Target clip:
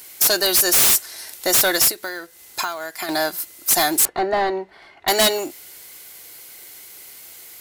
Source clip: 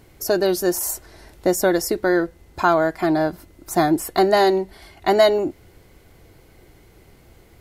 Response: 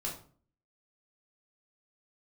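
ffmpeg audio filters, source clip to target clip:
-filter_complex "[0:a]asettb=1/sr,asplit=3[a][b][c];[a]atrim=end=1.824[d];[b]atrim=start=1.82:end=3.09,asetpts=PTS-STARTPTS,afade=t=in:d=0.004:c=qsin,afade=t=out:st=1.266:d=0.004:c=qsin,acompressor=threshold=-26dB:ratio=12[e];[c]atrim=start=3.086[f];[d][e]acrossfade=d=0.004:c1=hsin:c2=qsin[g];[g][f]acrossfade=d=0.004:c1=qsin:c2=hsin,aderivative,acrusher=bits=4:mode=log:mix=0:aa=0.000001,aeval=exprs='0.282*sin(PI/2*6.31*val(0)/0.282)':c=same,asettb=1/sr,asplit=3[h][i][j];[h]atrim=end=4.054[k];[i]atrim=start=4.05:end=5.08,asetpts=PTS-STARTPTS,afade=t=in:d=0.004:c=qsin,afade=t=out:st=1.026:d=0.004:c=qsin,lowpass=1.4k[l];[j]atrim=start=5.076[m];[k][l]acrossfade=d=0.004:c1=hsin:c2=qsin[n];[n][m]acrossfade=d=0.004:c1=qsin:c2=hsin"

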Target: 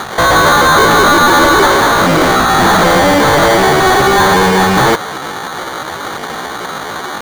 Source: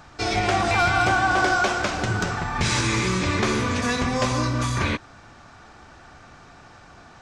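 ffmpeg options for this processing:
-filter_complex "[0:a]acrusher=samples=26:mix=1:aa=0.000001,asetrate=68011,aresample=44100,atempo=0.64842,asplit=2[a][b];[b]highpass=f=720:p=1,volume=29dB,asoftclip=type=tanh:threshold=-9.5dB[c];[a][c]amix=inputs=2:normalize=0,lowpass=f=5.5k:p=1,volume=-6dB,volume=7.5dB"

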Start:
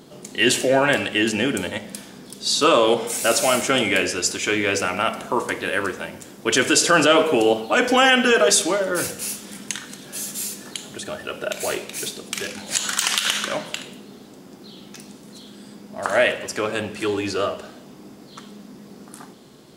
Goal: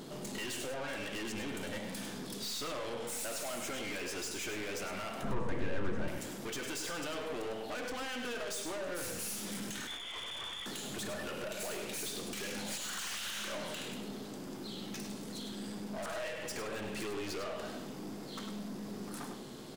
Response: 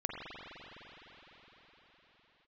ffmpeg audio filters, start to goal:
-filter_complex "[0:a]asettb=1/sr,asplit=3[a][b][c];[a]atrim=end=9.874[d];[b]atrim=start=9.87:end=10.66,asetpts=PTS-STARTPTS,afade=t=in:d=0.004:c=qsin,afade=t=out:st=0.786:d=0.004:c=qsin,lowpass=f=3.1k:t=q:w=0.5098,lowpass=f=3.1k:t=q:w=0.6013,lowpass=f=3.1k:t=q:w=0.9,lowpass=f=3.1k:t=q:w=2.563,afreqshift=-3700[e];[c]atrim=start=10.656[f];[d][e]acrossfade=d=0.004:c1=hsin:c2=qsin[g];[g][f]acrossfade=d=0.004:c1=qsin:c2=hsin,asettb=1/sr,asplit=3[h][i][j];[h]atrim=end=16.074[k];[i]atrim=start=16.07:end=16.52,asetpts=PTS-STARTPTS,afade=t=in:d=0.004:c=qsin,afade=t=out:st=0.446:d=0.004:c=qsin,aecho=1:1:6.3:0.65,atrim=end_sample=19845[l];[j]atrim=start=16.516[m];[k][l]acrossfade=d=0.004:c1=hsin:c2=qsin[n];[n][m]acrossfade=d=0.004:c1=qsin:c2=hsin,acompressor=threshold=-28dB:ratio=12,aeval=exprs='(tanh(89.1*val(0)+0.3)-tanh(0.3))/89.1':c=same,asettb=1/sr,asplit=3[o][p][q];[o]atrim=end=5.234[r];[p]atrim=start=5.23:end=6.08,asetpts=PTS-STARTPTS,afade=t=in:d=0.004:c=qsin,afade=t=out:st=0.846:d=0.004:c=qsin,aemphasis=mode=reproduction:type=riaa[s];[q]atrim=start=6.076[t];[r][s]acrossfade=d=0.004:c1=hsin:c2=qsin[u];[u][t]acrossfade=d=0.004:c1=qsin:c2=hsin,asplit=2[v][w];[w]aecho=0:1:102:0.398[x];[v][x]amix=inputs=2:normalize=0,volume=1dB"

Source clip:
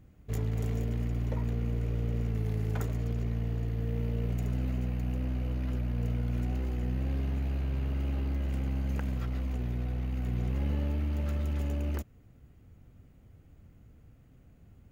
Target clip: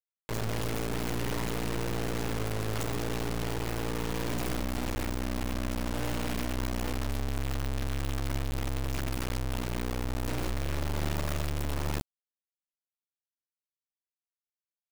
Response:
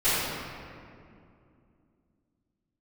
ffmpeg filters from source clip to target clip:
-af "acrusher=bits=3:dc=4:mix=0:aa=0.000001,volume=3dB"

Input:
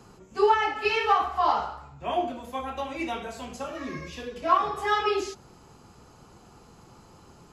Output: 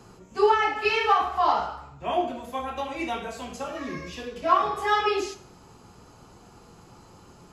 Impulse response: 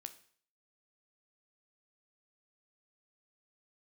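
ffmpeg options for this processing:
-filter_complex "[1:a]atrim=start_sample=2205[a];[0:a][a]afir=irnorm=-1:irlink=0,volume=6.5dB"

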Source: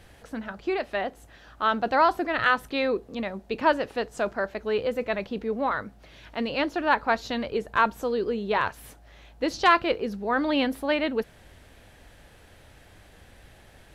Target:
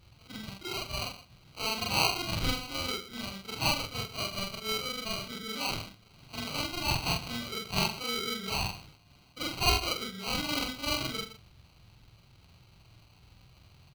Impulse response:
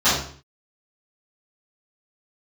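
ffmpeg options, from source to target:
-filter_complex "[0:a]afftfilt=real='re':imag='-im':win_size=4096:overlap=0.75,highpass=f=67:p=1,asplit=2[a][b];[b]aecho=0:1:121:0.2[c];[a][c]amix=inputs=2:normalize=0,acrusher=samples=25:mix=1:aa=0.000001,equalizer=f=125:t=o:w=1:g=7,equalizer=f=250:t=o:w=1:g=-6,equalizer=f=500:t=o:w=1:g=-10,equalizer=f=1k:t=o:w=1:g=-4,equalizer=f=4k:t=o:w=1:g=10,equalizer=f=8k:t=o:w=1:g=-5"

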